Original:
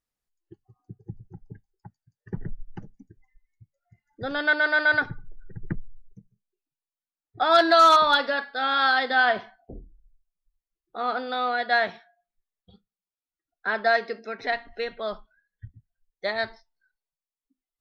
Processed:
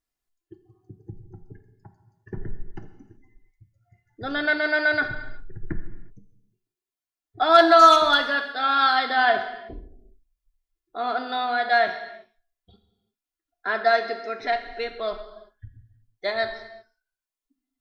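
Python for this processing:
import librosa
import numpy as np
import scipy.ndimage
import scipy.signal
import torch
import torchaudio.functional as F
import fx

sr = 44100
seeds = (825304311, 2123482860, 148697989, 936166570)

y = x + 0.5 * np.pad(x, (int(2.9 * sr / 1000.0), 0))[:len(x)]
y = fx.rev_gated(y, sr, seeds[0], gate_ms=400, shape='falling', drr_db=7.5)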